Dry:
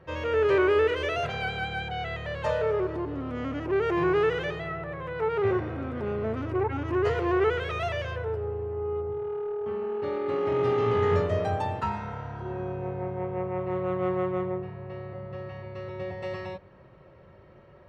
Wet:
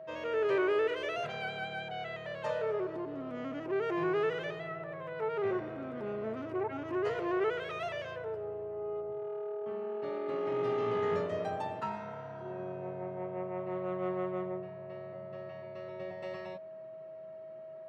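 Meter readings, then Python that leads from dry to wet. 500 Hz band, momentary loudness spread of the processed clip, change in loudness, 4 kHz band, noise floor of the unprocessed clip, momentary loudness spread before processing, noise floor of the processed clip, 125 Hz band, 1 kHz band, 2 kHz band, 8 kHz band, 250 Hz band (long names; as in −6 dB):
−6.5 dB, 13 LU, −7.0 dB, −7.0 dB, −53 dBFS, 12 LU, −47 dBFS, −13.5 dB, −7.0 dB, −7.0 dB, can't be measured, −7.0 dB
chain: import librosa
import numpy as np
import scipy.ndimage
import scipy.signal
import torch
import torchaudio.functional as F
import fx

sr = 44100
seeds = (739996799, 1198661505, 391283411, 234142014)

y = x + 10.0 ** (-37.0 / 20.0) * np.sin(2.0 * np.pi * 640.0 * np.arange(len(x)) / sr)
y = scipy.signal.sosfilt(scipy.signal.butter(4, 140.0, 'highpass', fs=sr, output='sos'), y)
y = F.gain(torch.from_numpy(y), -7.0).numpy()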